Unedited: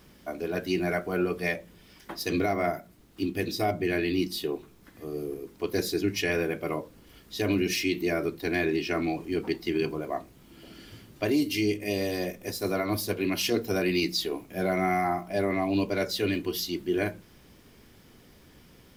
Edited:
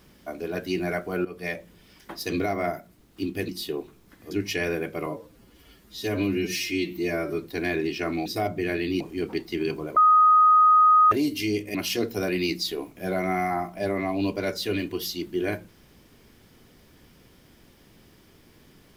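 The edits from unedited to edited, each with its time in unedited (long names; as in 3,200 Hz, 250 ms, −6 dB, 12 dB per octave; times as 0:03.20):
0:01.25–0:01.59: fade in, from −13.5 dB
0:03.49–0:04.24: move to 0:09.15
0:05.06–0:05.99: remove
0:06.74–0:08.31: time-stretch 1.5×
0:10.11–0:11.26: beep over 1,250 Hz −13 dBFS
0:11.89–0:13.28: remove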